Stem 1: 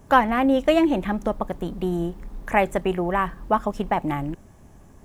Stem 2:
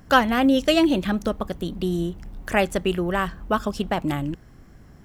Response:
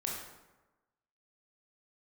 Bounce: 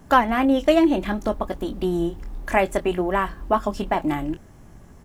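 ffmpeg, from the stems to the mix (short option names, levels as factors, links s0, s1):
-filter_complex "[0:a]volume=1[s0];[1:a]acompressor=threshold=0.0708:ratio=6,flanger=delay=17:depth=6.7:speed=0.61,adelay=2.7,volume=1.06[s1];[s0][s1]amix=inputs=2:normalize=0"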